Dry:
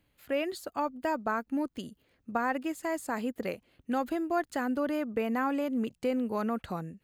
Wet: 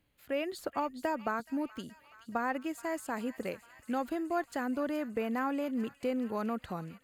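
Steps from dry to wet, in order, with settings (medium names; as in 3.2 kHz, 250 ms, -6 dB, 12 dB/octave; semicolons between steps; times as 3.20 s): feedback echo behind a high-pass 424 ms, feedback 73%, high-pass 1.7 kHz, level -13.5 dB; 0.58–1.40 s: three bands compressed up and down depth 70%; trim -3 dB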